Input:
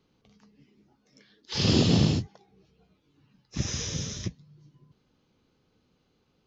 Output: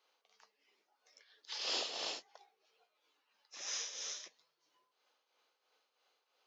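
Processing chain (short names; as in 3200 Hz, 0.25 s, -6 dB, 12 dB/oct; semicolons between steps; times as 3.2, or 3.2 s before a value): HPF 590 Hz 24 dB/oct; compressor 1.5:1, threshold -45 dBFS, peak gain reduction 7 dB; tremolo triangle 3 Hz, depth 65%; gain +1 dB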